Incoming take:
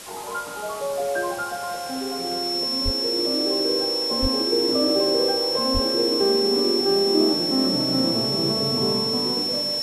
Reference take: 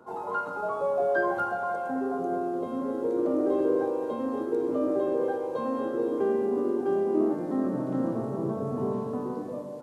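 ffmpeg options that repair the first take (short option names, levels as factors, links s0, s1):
-filter_complex "[0:a]bandreject=f=5400:w=30,asplit=3[s0][s1][s2];[s0]afade=t=out:st=2.84:d=0.02[s3];[s1]highpass=f=140:w=0.5412,highpass=f=140:w=1.3066,afade=t=in:st=2.84:d=0.02,afade=t=out:st=2.96:d=0.02[s4];[s2]afade=t=in:st=2.96:d=0.02[s5];[s3][s4][s5]amix=inputs=3:normalize=0,asplit=3[s6][s7][s8];[s6]afade=t=out:st=4.21:d=0.02[s9];[s7]highpass=f=140:w=0.5412,highpass=f=140:w=1.3066,afade=t=in:st=4.21:d=0.02,afade=t=out:st=4.33:d=0.02[s10];[s8]afade=t=in:st=4.33:d=0.02[s11];[s9][s10][s11]amix=inputs=3:normalize=0,asplit=3[s12][s13][s14];[s12]afade=t=out:st=5.73:d=0.02[s15];[s13]highpass=f=140:w=0.5412,highpass=f=140:w=1.3066,afade=t=in:st=5.73:d=0.02,afade=t=out:st=5.85:d=0.02[s16];[s14]afade=t=in:st=5.85:d=0.02[s17];[s15][s16][s17]amix=inputs=3:normalize=0,afwtdn=0.013,asetnsamples=n=441:p=0,asendcmd='4.11 volume volume -5dB',volume=1"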